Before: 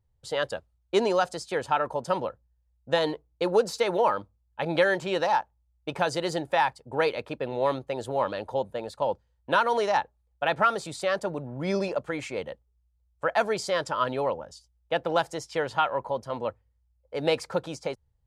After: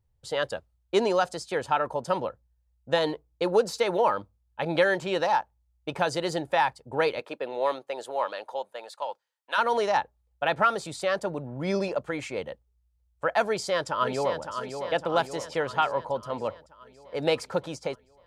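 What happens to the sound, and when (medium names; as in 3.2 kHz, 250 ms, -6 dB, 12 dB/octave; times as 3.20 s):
7.19–9.57 s: high-pass 310 Hz -> 1.2 kHz
13.45–14.42 s: echo throw 560 ms, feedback 60%, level -7.5 dB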